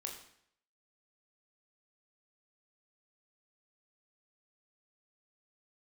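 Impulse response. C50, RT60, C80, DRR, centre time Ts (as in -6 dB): 7.0 dB, 0.65 s, 9.5 dB, 1.0 dB, 27 ms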